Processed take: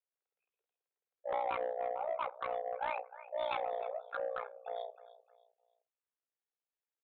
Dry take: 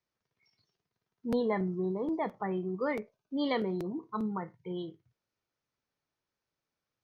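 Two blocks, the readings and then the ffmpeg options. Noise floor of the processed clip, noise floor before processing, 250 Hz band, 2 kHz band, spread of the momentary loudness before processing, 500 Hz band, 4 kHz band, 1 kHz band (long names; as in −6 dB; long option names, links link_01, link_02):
below −85 dBFS, below −85 dBFS, −29.5 dB, −2.5 dB, 9 LU, −3.0 dB, −5.5 dB, +2.5 dB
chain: -filter_complex "[0:a]afftdn=noise_reduction=12:noise_floor=-50,afreqshift=330,asubboost=boost=2.5:cutoff=180,asplit=2[link_01][link_02];[link_02]aecho=0:1:307|614|921:0.133|0.0427|0.0137[link_03];[link_01][link_03]amix=inputs=2:normalize=0,tremolo=f=60:d=0.974,aresample=8000,asoftclip=type=tanh:threshold=-29.5dB,aresample=44100,volume=2dB"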